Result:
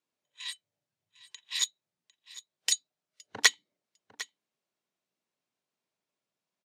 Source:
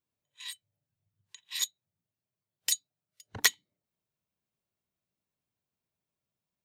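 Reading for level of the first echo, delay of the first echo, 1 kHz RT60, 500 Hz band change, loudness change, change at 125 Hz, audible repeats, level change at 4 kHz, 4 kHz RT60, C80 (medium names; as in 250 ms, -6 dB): -17.5 dB, 752 ms, no reverb, +3.0 dB, +2.0 dB, under -10 dB, 1, +3.5 dB, no reverb, no reverb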